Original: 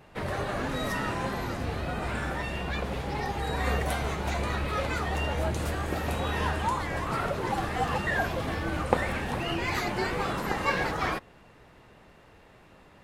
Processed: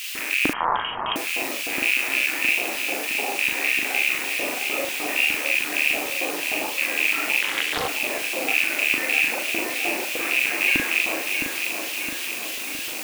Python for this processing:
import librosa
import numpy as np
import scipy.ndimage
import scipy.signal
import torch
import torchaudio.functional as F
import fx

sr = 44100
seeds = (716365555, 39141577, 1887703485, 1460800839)

p1 = fx.rattle_buzz(x, sr, strikes_db=-40.0, level_db=-17.0)
p2 = scipy.signal.sosfilt(scipy.signal.butter(4, 99.0, 'highpass', fs=sr, output='sos'), p1)
p3 = fx.over_compress(p2, sr, threshold_db=-39.0, ratio=-1.0)
p4 = p2 + (p3 * librosa.db_to_amplitude(1.0))
p5 = fx.filter_lfo_bandpass(p4, sr, shape='square', hz=0.59, low_hz=640.0, high_hz=2000.0, q=2.2)
p6 = fx.quant_dither(p5, sr, seeds[0], bits=6, dither='triangular')
p7 = fx.filter_lfo_highpass(p6, sr, shape='square', hz=3.3, low_hz=290.0, high_hz=2600.0, q=4.2)
p8 = fx.doubler(p7, sr, ms=40.0, db=-3)
p9 = p8 + fx.echo_feedback(p8, sr, ms=664, feedback_pct=58, wet_db=-6.0, dry=0)
p10 = fx.freq_invert(p9, sr, carrier_hz=3500, at=(0.53, 1.16))
y = fx.doppler_dist(p10, sr, depth_ms=0.54, at=(7.41, 7.88))